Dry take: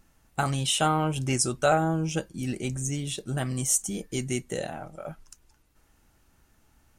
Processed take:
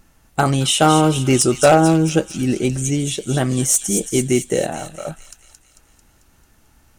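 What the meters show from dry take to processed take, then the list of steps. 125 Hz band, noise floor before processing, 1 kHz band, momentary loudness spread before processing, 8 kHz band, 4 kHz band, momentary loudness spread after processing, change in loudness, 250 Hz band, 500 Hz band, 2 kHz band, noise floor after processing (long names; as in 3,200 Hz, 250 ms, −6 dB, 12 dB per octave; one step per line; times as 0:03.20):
+9.5 dB, −65 dBFS, +9.5 dB, 13 LU, +9.0 dB, +9.0 dB, 13 LU, +10.5 dB, +13.0 dB, +12.5 dB, +8.0 dB, −56 dBFS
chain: wave folding −15 dBFS
dynamic equaliser 370 Hz, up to +7 dB, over −40 dBFS, Q 0.89
delay with a high-pass on its return 222 ms, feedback 56%, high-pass 3,000 Hz, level −6 dB
level +8 dB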